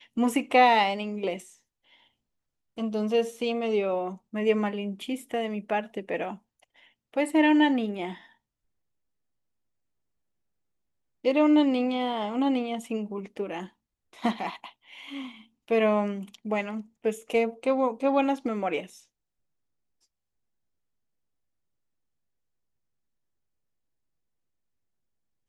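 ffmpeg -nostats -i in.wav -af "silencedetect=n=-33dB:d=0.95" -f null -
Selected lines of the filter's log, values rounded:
silence_start: 1.37
silence_end: 2.78 | silence_duration: 1.41
silence_start: 8.13
silence_end: 11.25 | silence_duration: 3.12
silence_start: 18.84
silence_end: 25.48 | silence_duration: 6.64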